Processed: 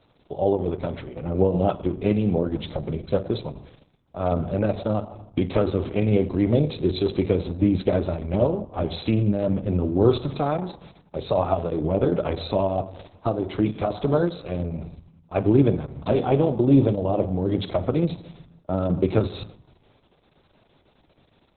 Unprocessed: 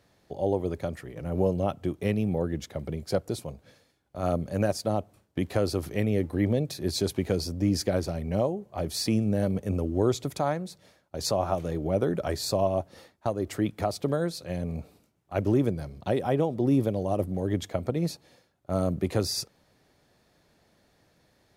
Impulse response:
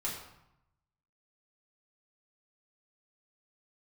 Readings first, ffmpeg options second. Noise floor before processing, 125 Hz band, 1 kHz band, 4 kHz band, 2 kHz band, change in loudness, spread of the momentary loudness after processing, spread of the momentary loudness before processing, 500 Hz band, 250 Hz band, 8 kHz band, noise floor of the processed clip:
-67 dBFS, +5.0 dB, +4.0 dB, -2.0 dB, +1.0 dB, +5.0 dB, 10 LU, 9 LU, +5.0 dB, +5.5 dB, under -40 dB, -62 dBFS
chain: -filter_complex "[0:a]equalizer=f=1.8k:w=6:g=-14.5,asplit=2[a][b];[1:a]atrim=start_sample=2205[c];[b][c]afir=irnorm=-1:irlink=0,volume=-10dB[d];[a][d]amix=inputs=2:normalize=0,volume=4.5dB" -ar 48000 -c:a libopus -b:a 6k

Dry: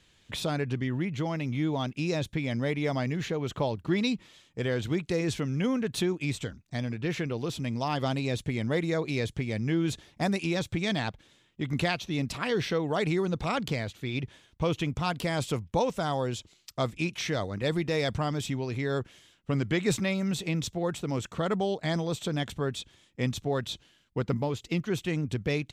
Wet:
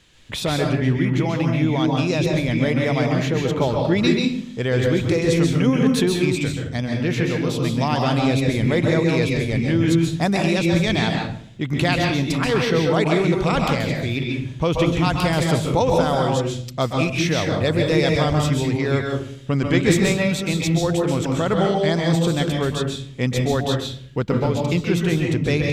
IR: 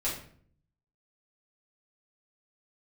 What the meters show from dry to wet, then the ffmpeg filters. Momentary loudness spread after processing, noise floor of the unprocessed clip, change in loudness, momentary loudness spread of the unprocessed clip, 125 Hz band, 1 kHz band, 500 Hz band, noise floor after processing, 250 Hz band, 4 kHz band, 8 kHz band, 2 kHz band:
6 LU, -65 dBFS, +10.0 dB, 6 LU, +11.0 dB, +9.5 dB, +10.0 dB, -34 dBFS, +10.5 dB, +9.5 dB, +9.0 dB, +9.5 dB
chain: -filter_complex "[0:a]asplit=2[a][b];[1:a]atrim=start_sample=2205,adelay=128[c];[b][c]afir=irnorm=-1:irlink=0,volume=-6.5dB[d];[a][d]amix=inputs=2:normalize=0,volume=7dB"

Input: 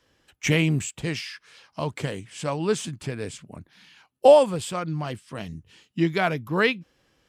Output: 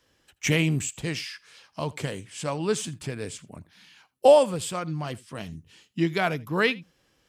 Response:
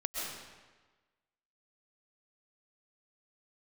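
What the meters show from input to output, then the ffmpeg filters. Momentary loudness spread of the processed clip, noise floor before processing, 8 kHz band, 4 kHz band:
19 LU, -70 dBFS, +1.5 dB, -0.5 dB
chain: -filter_complex "[0:a]highshelf=f=5.3k:g=5.5,asplit=2[a][b];[1:a]atrim=start_sample=2205,atrim=end_sample=3969,adelay=81[c];[b][c]afir=irnorm=-1:irlink=0,volume=-21.5dB[d];[a][d]amix=inputs=2:normalize=0,volume=-2dB"

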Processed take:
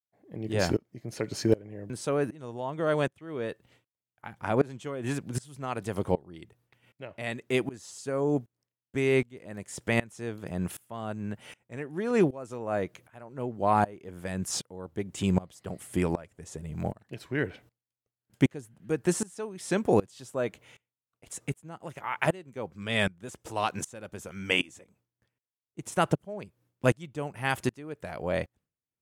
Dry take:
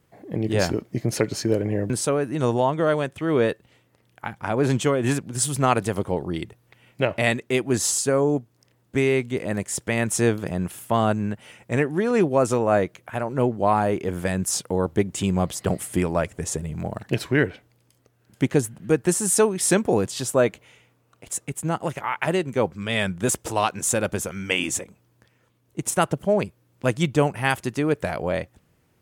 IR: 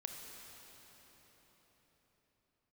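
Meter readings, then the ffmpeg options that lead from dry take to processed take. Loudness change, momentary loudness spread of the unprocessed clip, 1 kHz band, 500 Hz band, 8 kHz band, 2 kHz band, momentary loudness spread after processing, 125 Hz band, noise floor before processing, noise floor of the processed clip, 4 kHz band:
-7.5 dB, 8 LU, -7.0 dB, -8.0 dB, -14.5 dB, -6.5 dB, 15 LU, -7.5 dB, -64 dBFS, under -85 dBFS, -6.5 dB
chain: -filter_complex "[0:a]acrossover=split=5900[a][b];[b]acompressor=threshold=-33dB:ratio=4:attack=1:release=60[c];[a][c]amix=inputs=2:normalize=0,agate=range=-33dB:threshold=-49dB:ratio=3:detection=peak,aeval=exprs='val(0)*pow(10,-24*if(lt(mod(-1.3*n/s,1),2*abs(-1.3)/1000),1-mod(-1.3*n/s,1)/(2*abs(-1.3)/1000),(mod(-1.3*n/s,1)-2*abs(-1.3)/1000)/(1-2*abs(-1.3)/1000))/20)':c=same"

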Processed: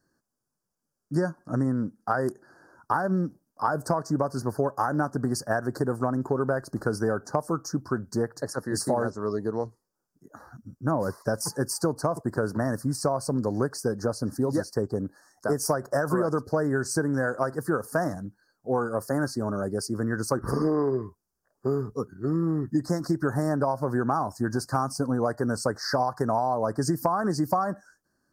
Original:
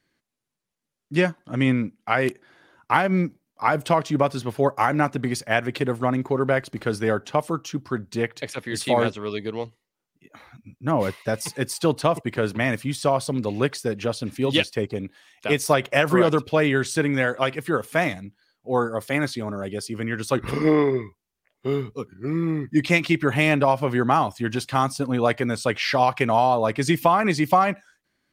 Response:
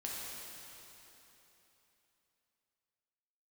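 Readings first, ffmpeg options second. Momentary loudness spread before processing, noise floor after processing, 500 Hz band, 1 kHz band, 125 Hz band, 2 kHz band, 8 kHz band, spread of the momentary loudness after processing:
10 LU, -83 dBFS, -4.5 dB, -6.0 dB, -3.0 dB, -9.5 dB, 0.0 dB, 5 LU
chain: -af "asuperstop=centerf=2800:order=12:qfactor=0.93,acompressor=threshold=-23dB:ratio=6,volume=1.5dB"

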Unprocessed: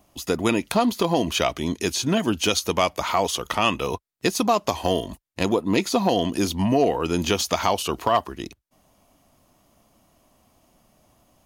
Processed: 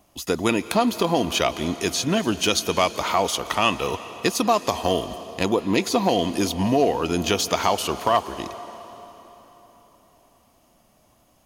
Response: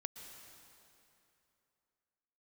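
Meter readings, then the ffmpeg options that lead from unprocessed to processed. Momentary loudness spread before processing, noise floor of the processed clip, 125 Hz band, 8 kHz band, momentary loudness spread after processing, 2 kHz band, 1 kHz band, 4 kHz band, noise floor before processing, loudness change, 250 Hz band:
6 LU, -60 dBFS, -1.0 dB, +1.0 dB, 7 LU, +1.0 dB, +1.0 dB, +1.0 dB, -64 dBFS, +0.5 dB, -0.5 dB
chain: -filter_complex "[0:a]asplit=2[a][b];[1:a]atrim=start_sample=2205,asetrate=31311,aresample=44100,lowshelf=f=200:g=-9.5[c];[b][c]afir=irnorm=-1:irlink=0,volume=-2.5dB[d];[a][d]amix=inputs=2:normalize=0,volume=-3dB"

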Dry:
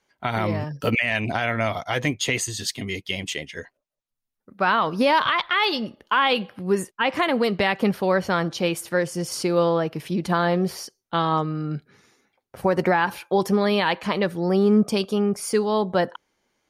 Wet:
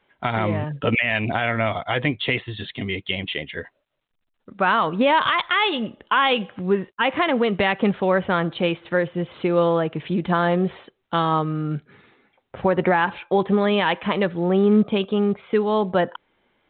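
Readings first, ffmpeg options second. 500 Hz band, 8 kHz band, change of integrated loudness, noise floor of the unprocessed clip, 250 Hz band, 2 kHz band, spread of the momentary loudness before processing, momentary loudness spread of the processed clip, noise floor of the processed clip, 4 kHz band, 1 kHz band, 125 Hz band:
+1.5 dB, under -40 dB, +1.5 dB, -81 dBFS, +1.5 dB, +1.5 dB, 8 LU, 8 LU, -73 dBFS, +0.5 dB, +1.5 dB, +1.5 dB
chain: -filter_complex "[0:a]asplit=2[a][b];[b]acompressor=threshold=-35dB:ratio=4,volume=-1dB[c];[a][c]amix=inputs=2:normalize=0" -ar 8000 -c:a pcm_mulaw

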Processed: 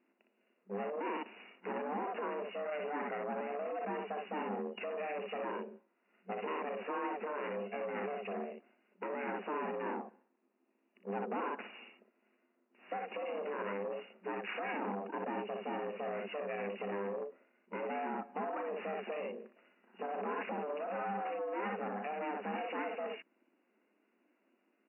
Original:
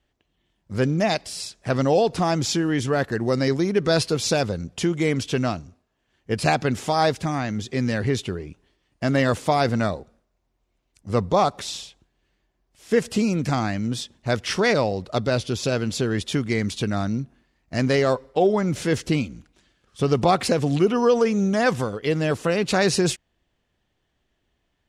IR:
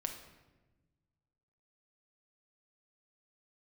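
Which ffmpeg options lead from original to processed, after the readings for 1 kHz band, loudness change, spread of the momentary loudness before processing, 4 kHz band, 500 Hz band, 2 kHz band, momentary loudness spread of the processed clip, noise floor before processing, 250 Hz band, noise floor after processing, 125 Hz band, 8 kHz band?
-12.0 dB, -17.0 dB, 8 LU, -25.0 dB, -15.5 dB, -15.0 dB, 6 LU, -73 dBFS, -20.5 dB, -77 dBFS, under -25 dB, under -40 dB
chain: -af "aecho=1:1:36|60:0.282|0.501,alimiter=limit=-16dB:level=0:latency=1:release=100,acompressor=threshold=-26dB:ratio=4,aeval=exprs='val(0)*sin(2*PI*300*n/s)':c=same,asoftclip=type=tanh:threshold=-30.5dB,afftfilt=real='re*between(b*sr/4096,190,2900)':imag='im*between(b*sr/4096,190,2900)':win_size=4096:overlap=0.75" -ar 32000 -c:a libmp3lame -b:a 40k

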